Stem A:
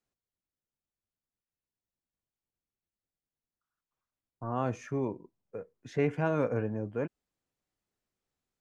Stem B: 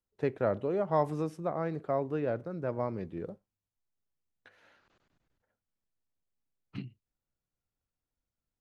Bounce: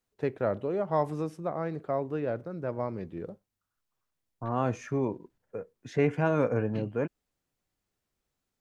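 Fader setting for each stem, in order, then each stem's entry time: +3.0, +0.5 dB; 0.00, 0.00 s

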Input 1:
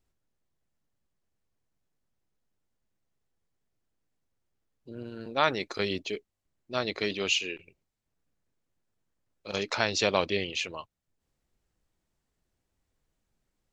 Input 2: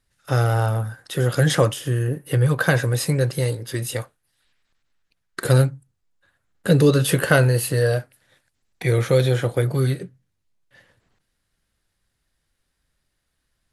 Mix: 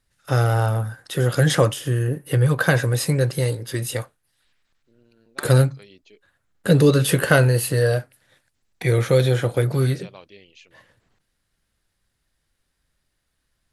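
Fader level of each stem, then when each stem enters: -18.0, +0.5 dB; 0.00, 0.00 s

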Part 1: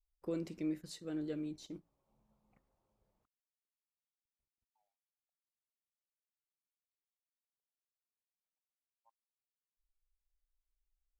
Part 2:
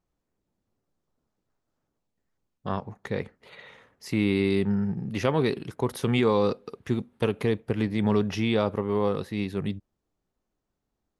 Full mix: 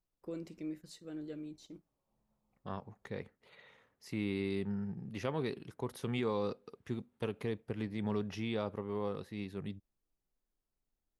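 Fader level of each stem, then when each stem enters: -4.0, -12.0 dB; 0.00, 0.00 s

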